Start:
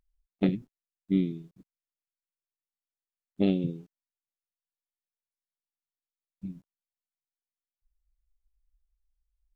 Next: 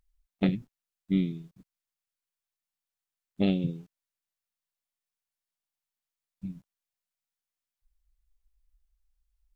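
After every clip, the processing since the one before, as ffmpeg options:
-af "equalizer=f=340:w=1.1:g=-7.5,volume=3.5dB"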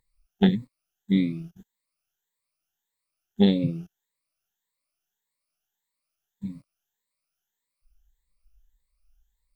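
-af "afftfilt=real='re*pow(10,17/40*sin(2*PI*(0.99*log(max(b,1)*sr/1024/100)/log(2)-(1.7)*(pts-256)/sr)))':imag='im*pow(10,17/40*sin(2*PI*(0.99*log(max(b,1)*sr/1024/100)/log(2)-(1.7)*(pts-256)/sr)))':win_size=1024:overlap=0.75,volume=3dB"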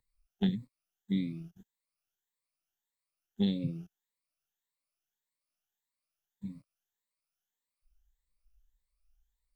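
-filter_complex "[0:a]acrossover=split=220|3000[a][b][c];[b]acompressor=threshold=-32dB:ratio=3[d];[a][d][c]amix=inputs=3:normalize=0,volume=-7dB"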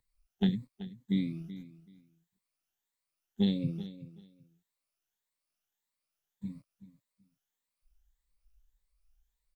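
-af "aecho=1:1:380|760:0.178|0.0338,volume=1.5dB"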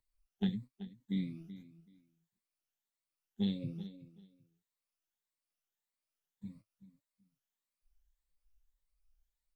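-af "flanger=delay=3.1:depth=6.6:regen=46:speed=0.99:shape=sinusoidal,volume=-2dB"

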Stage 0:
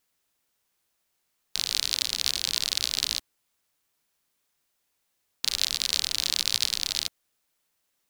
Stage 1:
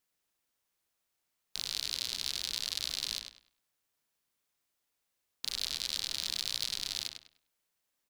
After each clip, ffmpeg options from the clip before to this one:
-filter_complex "[0:a]asplit=2[a][b];[b]adelay=100,lowpass=f=4.2k:p=1,volume=-6.5dB,asplit=2[c][d];[d]adelay=100,lowpass=f=4.2k:p=1,volume=0.29,asplit=2[e][f];[f]adelay=100,lowpass=f=4.2k:p=1,volume=0.29,asplit=2[g][h];[h]adelay=100,lowpass=f=4.2k:p=1,volume=0.29[i];[a][c][e][g][i]amix=inputs=5:normalize=0,asoftclip=type=tanh:threshold=-8dB,volume=-7dB"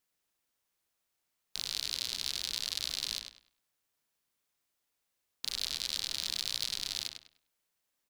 -af anull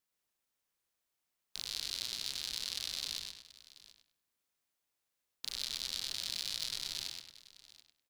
-af "aecho=1:1:123|732:0.562|0.126,volume=-4.5dB"

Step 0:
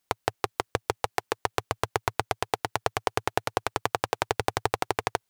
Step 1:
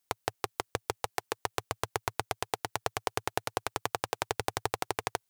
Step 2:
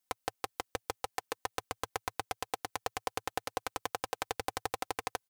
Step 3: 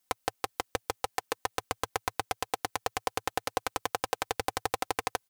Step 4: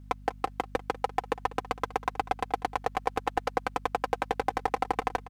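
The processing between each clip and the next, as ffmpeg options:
-af "highshelf=f=4.9k:g=7,volume=-6dB"
-af "aecho=1:1:3.9:0.59,volume=-5dB"
-af "alimiter=limit=-14dB:level=0:latency=1,volume=6.5dB"
-filter_complex "[0:a]asplit=2[a][b];[b]highpass=f=720:p=1,volume=20dB,asoftclip=type=tanh:threshold=-7dB[c];[a][c]amix=inputs=2:normalize=0,lowpass=f=1.1k:p=1,volume=-6dB,aecho=1:1:195:0.126,aeval=exprs='val(0)+0.00562*(sin(2*PI*50*n/s)+sin(2*PI*2*50*n/s)/2+sin(2*PI*3*50*n/s)/3+sin(2*PI*4*50*n/s)/4+sin(2*PI*5*50*n/s)/5)':c=same,volume=-1.5dB"

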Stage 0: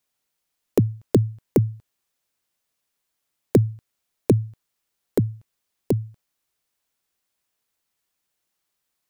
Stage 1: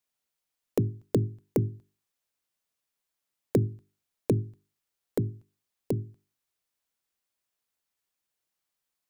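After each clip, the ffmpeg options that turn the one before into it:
-af "bandreject=f=50:t=h:w=6,bandreject=f=100:t=h:w=6,bandreject=f=150:t=h:w=6,bandreject=f=200:t=h:w=6,bandreject=f=250:t=h:w=6,bandreject=f=300:t=h:w=6,bandreject=f=350:t=h:w=6,bandreject=f=400:t=h:w=6,volume=-6.5dB"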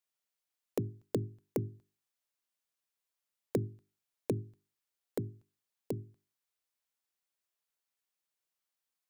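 -af "lowshelf=f=310:g=-6.5,volume=-4.5dB"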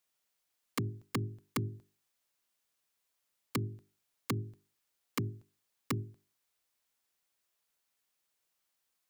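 -af "acompressor=threshold=-34dB:ratio=16,aeval=exprs='(mod(42.2*val(0)+1,2)-1)/42.2':c=same,volume=7dB"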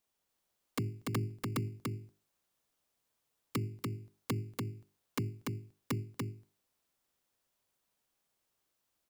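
-filter_complex "[0:a]asplit=2[a][b];[b]acrusher=samples=18:mix=1:aa=0.000001,volume=-8.5dB[c];[a][c]amix=inputs=2:normalize=0,aecho=1:1:290:0.708,volume=-3dB"

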